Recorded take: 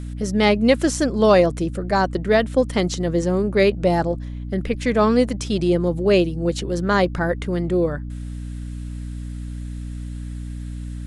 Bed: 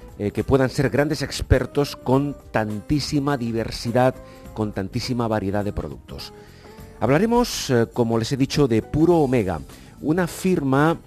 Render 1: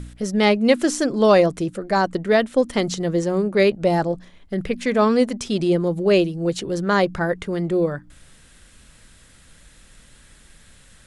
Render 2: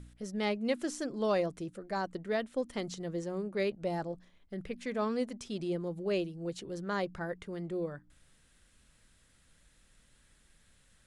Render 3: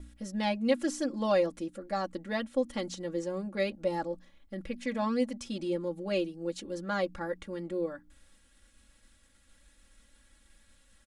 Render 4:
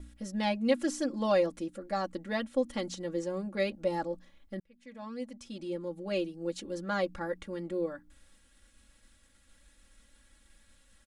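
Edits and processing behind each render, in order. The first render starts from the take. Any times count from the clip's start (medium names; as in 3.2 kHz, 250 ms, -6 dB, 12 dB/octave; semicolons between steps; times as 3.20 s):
de-hum 60 Hz, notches 5
trim -15.5 dB
comb 3.6 ms, depth 93%; expander -59 dBFS
4.60–6.49 s: fade in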